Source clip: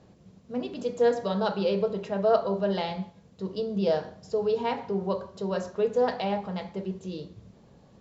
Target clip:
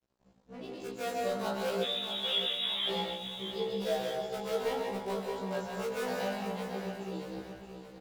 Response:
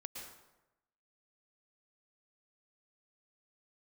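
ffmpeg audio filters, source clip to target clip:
-filter_complex "[0:a]asplit=2[a][b];[b]aeval=exprs='(mod(10.6*val(0)+1,2)-1)/10.6':c=same,volume=-9dB[c];[a][c]amix=inputs=2:normalize=0,flanger=delay=19:depth=5.2:speed=0.41,acrossover=split=450[d][e];[d]alimiter=level_in=9.5dB:limit=-24dB:level=0:latency=1,volume=-9.5dB[f];[f][e]amix=inputs=2:normalize=0[g];[1:a]atrim=start_sample=2205,asetrate=38808,aresample=44100[h];[g][h]afir=irnorm=-1:irlink=0,asettb=1/sr,asplit=3[i][j][k];[i]atrim=end=1.834[l];[j]atrim=start=1.83:end=2.89,asetpts=PTS-STARTPTS,afade=t=in:d=0.004:c=qsin,afade=t=out:st=1.056:d=0.004:c=qsin,lowpass=f=3.4k:t=q:w=0.5098,lowpass=f=3.4k:t=q:w=0.6013,lowpass=f=3.4k:t=q:w=0.9,lowpass=f=3.4k:t=q:w=2.563,afreqshift=-4000[m];[k]atrim=start=2.886[n];[l][m]acrossfade=d=0.004:c1=hsin:c2=qsin[o];[o][n]acrossfade=d=0.004:c1=qsin:c2=hsin,aecho=1:1:624|1248|1872|2496|3120:0.376|0.177|0.083|0.039|0.0183,aeval=exprs='sgn(val(0))*max(abs(val(0))-0.00178,0)':c=same,afftfilt=real='re*1.73*eq(mod(b,3),0)':imag='im*1.73*eq(mod(b,3),0)':win_size=2048:overlap=0.75,volume=2dB"

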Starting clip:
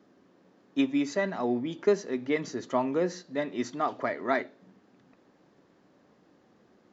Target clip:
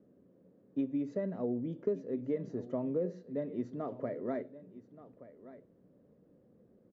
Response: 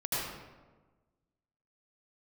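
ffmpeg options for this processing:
-filter_complex "[0:a]firequalizer=gain_entry='entry(140,0);entry(340,-8);entry(500,-1);entry(790,-19);entry(4800,-29)':delay=0.05:min_phase=1,acompressor=threshold=-34dB:ratio=2.5,asplit=2[a][b];[b]aecho=0:1:1176:0.15[c];[a][c]amix=inputs=2:normalize=0,volume=2.5dB"

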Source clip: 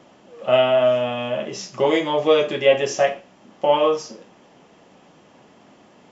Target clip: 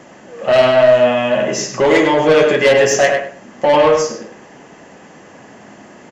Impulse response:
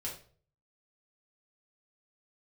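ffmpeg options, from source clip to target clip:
-filter_complex "[0:a]superequalizer=11b=2:13b=0.631:15b=1.78,asoftclip=type=tanh:threshold=-16dB,asplit=2[a][b];[b]adelay=102,lowpass=f=2.8k:p=1,volume=-4dB,asplit=2[c][d];[d]adelay=102,lowpass=f=2.8k:p=1,volume=0.23,asplit=2[e][f];[f]adelay=102,lowpass=f=2.8k:p=1,volume=0.23[g];[c][e][g]amix=inputs=3:normalize=0[h];[a][h]amix=inputs=2:normalize=0,volume=9dB"

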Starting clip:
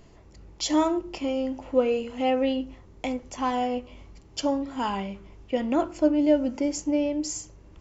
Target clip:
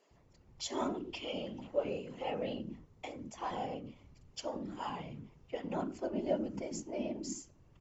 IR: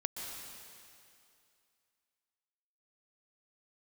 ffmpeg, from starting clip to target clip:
-filter_complex "[0:a]asettb=1/sr,asplit=3[a][b][c];[a]atrim=end=0.944[d];[b]atrim=start=0.94:end=1.67,asetpts=PTS-STARTPTS,afade=t=in:d=0.004:c=qsin,afade=t=out:st=0.726:d=0.004:c=qsin,equalizer=f=3.2k:w=1.8:g=12.5[e];[c]atrim=start=1.666[f];[d][e]acrossfade=d=0.004:c1=hsin:c2=qsin[g];[g][f]acrossfade=d=0.004:c1=qsin:c2=hsin,afftfilt=real='hypot(re,im)*cos(2*PI*random(0))':imag='hypot(re,im)*sin(2*PI*random(1))':win_size=512:overlap=0.75,acrossover=split=320[h][i];[h]adelay=110[j];[j][i]amix=inputs=2:normalize=0,volume=-5.5dB"

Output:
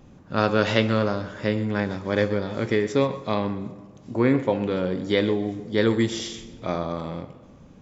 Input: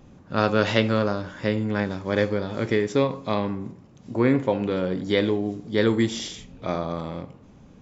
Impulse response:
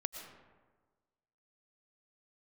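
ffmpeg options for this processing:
-filter_complex "[0:a]asplit=2[a][b];[1:a]atrim=start_sample=2205,asetrate=42777,aresample=44100,adelay=128[c];[b][c]afir=irnorm=-1:irlink=0,volume=-15.5dB[d];[a][d]amix=inputs=2:normalize=0"

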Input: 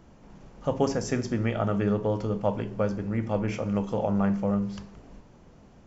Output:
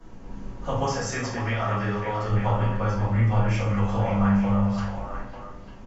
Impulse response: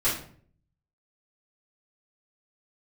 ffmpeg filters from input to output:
-filter_complex "[0:a]asettb=1/sr,asplit=3[a][b][c];[a]atrim=end=0.824[d];[b]atrim=start=0.82:end=2.27,asetpts=PTS-STARTPTS,afade=t=in:d=0.004:c=qsin,afade=t=out:st=1.446:d=0.004:c=qsin,lowshelf=f=260:g=-11[e];[c]atrim=start=2.266[f];[d][e]acrossfade=d=0.004:c1=hsin:c2=qsin[g];[g][f]acrossfade=d=0.004:c1=qsin:c2=hsin,acrossover=split=150|650|3700[h][i][j][k];[i]acompressor=threshold=-44dB:ratio=6[l];[j]aecho=1:1:551|897:0.447|0.355[m];[h][l][m][k]amix=inputs=4:normalize=0[n];[1:a]atrim=start_sample=2205,asetrate=36162,aresample=44100[o];[n][o]afir=irnorm=-1:irlink=0,volume=-6dB"

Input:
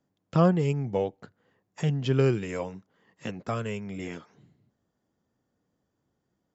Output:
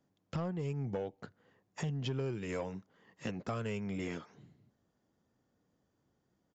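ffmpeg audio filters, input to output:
-af "acompressor=threshold=-32dB:ratio=6,asoftclip=type=tanh:threshold=-27.5dB,aresample=16000,aresample=44100"

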